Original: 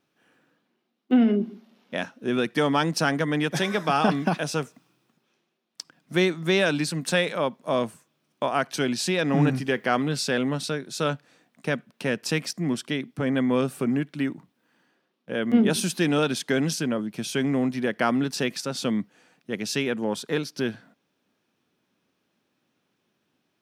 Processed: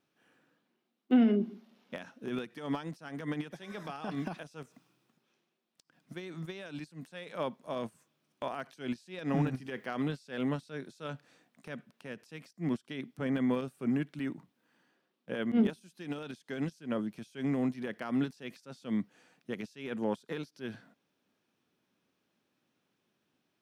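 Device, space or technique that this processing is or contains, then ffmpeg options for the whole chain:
de-esser from a sidechain: -filter_complex "[0:a]asplit=2[a][b];[b]highpass=f=6.2k:w=0.5412,highpass=f=6.2k:w=1.3066,apad=whole_len=1041383[c];[a][c]sidechaincompress=threshold=-56dB:ratio=20:attack=0.7:release=77,volume=-5dB"

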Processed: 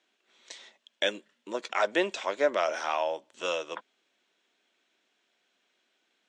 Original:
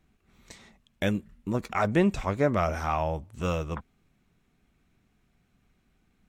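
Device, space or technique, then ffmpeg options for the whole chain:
phone speaker on a table: -af "highpass=f=420:w=0.5412,highpass=f=420:w=1.3066,equalizer=f=440:t=q:w=4:g=-6,equalizer=f=770:t=q:w=4:g=-7,equalizer=f=1.2k:t=q:w=4:g=-8,equalizer=f=2.2k:t=q:w=4:g=-4,equalizer=f=3.3k:t=q:w=4:g=6,lowpass=f=7.4k:w=0.5412,lowpass=f=7.4k:w=1.3066,volume=4.5dB"

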